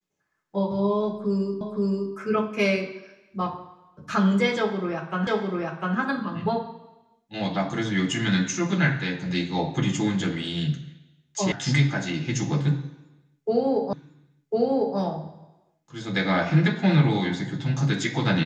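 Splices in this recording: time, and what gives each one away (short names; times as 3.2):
1.61 repeat of the last 0.52 s
5.27 repeat of the last 0.7 s
11.52 sound cut off
13.93 repeat of the last 1.05 s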